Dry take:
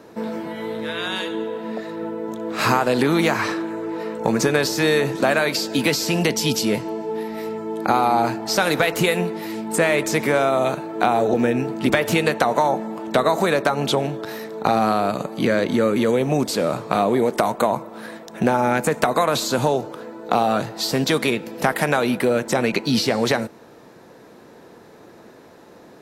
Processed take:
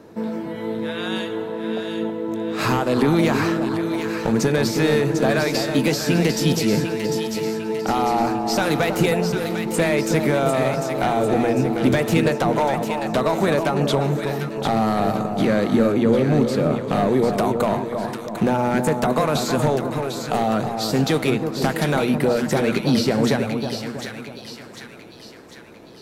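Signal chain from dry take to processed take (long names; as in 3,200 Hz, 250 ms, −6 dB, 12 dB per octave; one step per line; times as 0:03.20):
0:15.92–0:16.90: high-shelf EQ 4,700 Hz −9.5 dB
hard clipping −12 dBFS, distortion −16 dB
low-shelf EQ 290 Hz +10 dB
mains-hum notches 60/120/180/240 Hz
echo with a time of its own for lows and highs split 1,300 Hz, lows 321 ms, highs 749 ms, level −6 dB
level −3.5 dB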